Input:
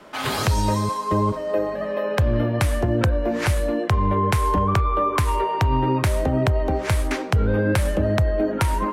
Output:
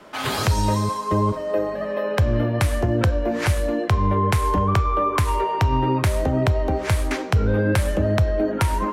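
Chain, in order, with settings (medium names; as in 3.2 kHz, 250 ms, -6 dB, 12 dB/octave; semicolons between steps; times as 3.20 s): on a send: amplifier tone stack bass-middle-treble 5-5-5 + reverberation RT60 0.65 s, pre-delay 3 ms, DRR 16.5 dB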